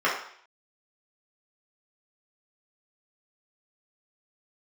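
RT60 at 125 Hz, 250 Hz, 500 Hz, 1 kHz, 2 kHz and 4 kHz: 0.45 s, 0.55 s, 0.55 s, 0.60 s, 0.60 s, 0.65 s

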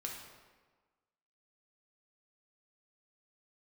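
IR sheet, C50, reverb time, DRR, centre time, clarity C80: 3.0 dB, 1.4 s, -1.0 dB, 52 ms, 5.5 dB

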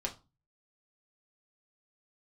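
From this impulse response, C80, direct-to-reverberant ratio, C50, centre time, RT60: 21.5 dB, -1.0 dB, 15.0 dB, 10 ms, 0.30 s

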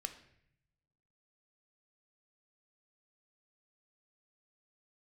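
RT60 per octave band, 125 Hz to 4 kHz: 1.5 s, 1.1 s, 0.75 s, 0.65 s, 0.80 s, 0.60 s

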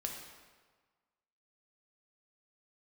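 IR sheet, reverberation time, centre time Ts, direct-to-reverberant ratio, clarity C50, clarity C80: 1.5 s, 49 ms, 1.0 dB, 3.5 dB, 5.5 dB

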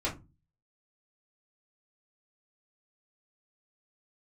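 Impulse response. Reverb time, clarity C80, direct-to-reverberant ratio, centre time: 0.25 s, 20.5 dB, -6.0 dB, 18 ms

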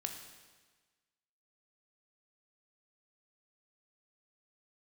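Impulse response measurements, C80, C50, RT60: 8.0 dB, 6.0 dB, 1.4 s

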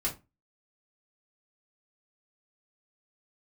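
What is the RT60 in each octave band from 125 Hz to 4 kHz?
0.35 s, 0.30 s, 0.25 s, 0.25 s, 0.20 s, 0.20 s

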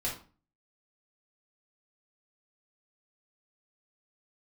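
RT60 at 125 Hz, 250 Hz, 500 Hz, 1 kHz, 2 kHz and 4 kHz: 0.50 s, 0.50 s, 0.40 s, 0.35 s, 0.30 s, 0.30 s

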